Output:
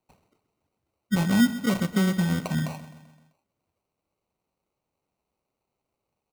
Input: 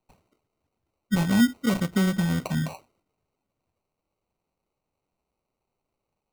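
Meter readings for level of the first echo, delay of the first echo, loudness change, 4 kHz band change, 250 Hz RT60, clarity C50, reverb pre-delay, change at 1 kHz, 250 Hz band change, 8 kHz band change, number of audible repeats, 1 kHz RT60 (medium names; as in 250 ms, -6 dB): -14.5 dB, 129 ms, 0.0 dB, 0.0 dB, no reverb, no reverb, no reverb, 0.0 dB, 0.0 dB, 0.0 dB, 4, no reverb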